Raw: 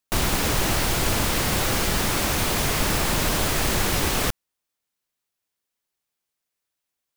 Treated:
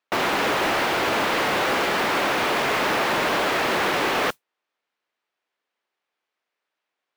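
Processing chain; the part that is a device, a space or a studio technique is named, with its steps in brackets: carbon microphone (band-pass 370–2600 Hz; saturation -25 dBFS, distortion -15 dB; modulation noise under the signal 19 dB); trim +8.5 dB

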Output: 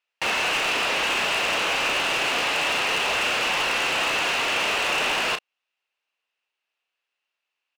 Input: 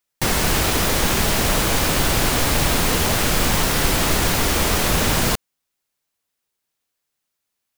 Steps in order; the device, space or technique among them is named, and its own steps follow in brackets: megaphone (band-pass 560–3400 Hz; peaking EQ 2.7 kHz +12 dB 0.28 oct; hard clipper -21 dBFS, distortion -11 dB; doubling 33 ms -9 dB)

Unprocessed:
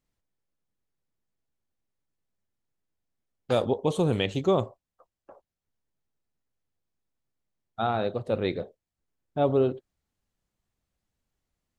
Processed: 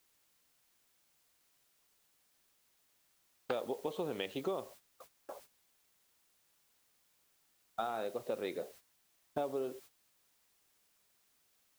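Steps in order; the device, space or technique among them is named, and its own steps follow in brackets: baby monitor (band-pass 320–4100 Hz; compression 8:1, threshold -38 dBFS, peak gain reduction 18 dB; white noise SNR 16 dB; gate -59 dBFS, range -13 dB); trim +3.5 dB

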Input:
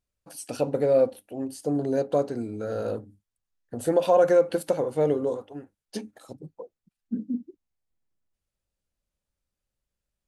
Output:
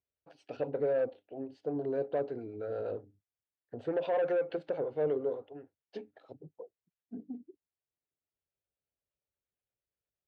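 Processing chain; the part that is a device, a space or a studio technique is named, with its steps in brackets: guitar amplifier with harmonic tremolo (harmonic tremolo 8.5 Hz, depth 50%, crossover 500 Hz; saturation -20 dBFS, distortion -13 dB; cabinet simulation 83–3400 Hz, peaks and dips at 210 Hz -8 dB, 420 Hz +6 dB, 670 Hz +4 dB, 1.1 kHz -4 dB); trim -6.5 dB

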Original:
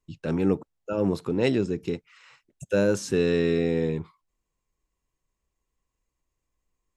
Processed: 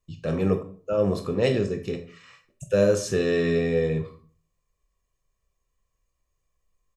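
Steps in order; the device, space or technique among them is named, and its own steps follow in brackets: microphone above a desk (comb 1.7 ms, depth 55%; reverberation RT60 0.45 s, pre-delay 17 ms, DRR 5.5 dB)

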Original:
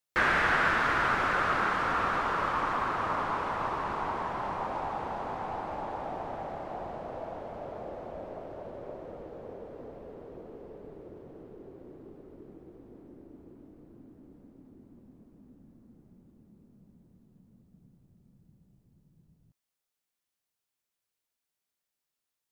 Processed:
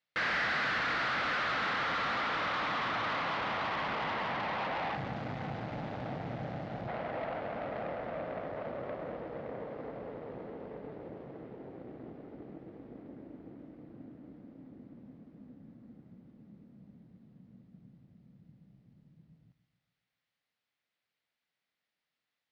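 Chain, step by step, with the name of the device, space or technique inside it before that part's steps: 4.95–6.88 s: ten-band graphic EQ 125 Hz +10 dB, 500 Hz -3 dB, 1 kHz -12 dB, 2 kHz -4 dB, 8 kHz +9 dB; analogue delay pedal into a guitar amplifier (bucket-brigade echo 139 ms, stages 2048, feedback 52%, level -14 dB; valve stage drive 39 dB, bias 0.7; cabinet simulation 78–4400 Hz, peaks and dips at 81 Hz -9 dB, 380 Hz -7 dB, 980 Hz -4 dB, 2 kHz +5 dB); trim +8 dB

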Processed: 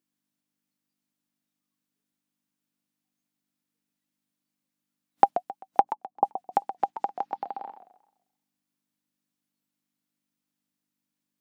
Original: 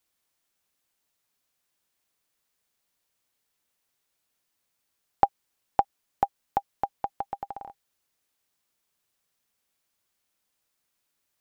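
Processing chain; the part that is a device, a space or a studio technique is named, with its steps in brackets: video cassette with head-switching buzz (mains buzz 50 Hz, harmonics 6, -60 dBFS -8 dB/octave; white noise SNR 37 dB); high-pass 210 Hz 24 dB/octave; spectral noise reduction 17 dB; 5.81–6.25 s: elliptic low-pass 1.1 kHz; modulated delay 131 ms, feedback 34%, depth 200 cents, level -11 dB; trim +2.5 dB

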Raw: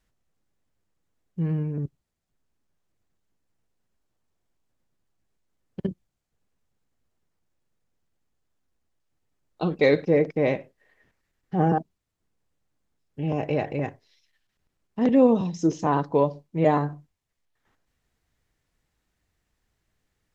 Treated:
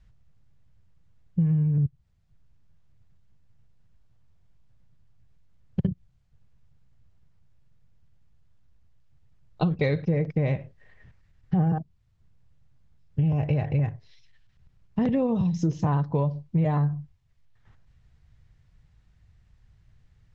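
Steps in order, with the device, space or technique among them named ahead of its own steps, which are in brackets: jukebox (low-pass 5.4 kHz 12 dB/octave; resonant low shelf 190 Hz +13.5 dB, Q 1.5; compression 6:1, threshold -26 dBFS, peak gain reduction 15 dB); trim +4.5 dB

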